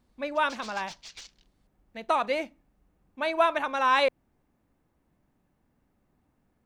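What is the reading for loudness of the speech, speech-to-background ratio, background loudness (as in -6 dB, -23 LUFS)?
-27.0 LUFS, 18.5 dB, -45.5 LUFS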